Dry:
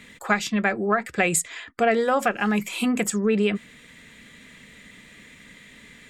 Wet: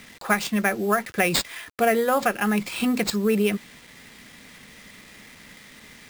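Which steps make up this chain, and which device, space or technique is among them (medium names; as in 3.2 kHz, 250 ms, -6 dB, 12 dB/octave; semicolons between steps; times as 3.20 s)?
early 8-bit sampler (sample-rate reducer 12 kHz, jitter 0%; bit crusher 8-bit)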